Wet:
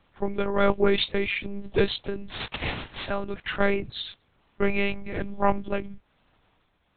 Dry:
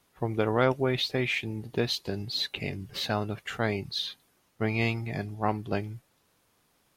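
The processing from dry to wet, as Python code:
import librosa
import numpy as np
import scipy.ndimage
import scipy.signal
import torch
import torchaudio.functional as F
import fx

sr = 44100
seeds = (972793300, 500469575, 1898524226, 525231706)

y = fx.spec_flatten(x, sr, power=0.23, at=(2.29, 3.08), fade=0.02)
y = y * (1.0 - 0.51 / 2.0 + 0.51 / 2.0 * np.cos(2.0 * np.pi * 1.1 * (np.arange(len(y)) / sr)))
y = fx.lpc_monotone(y, sr, seeds[0], pitch_hz=200.0, order=8)
y = y * 10.0 ** (6.5 / 20.0)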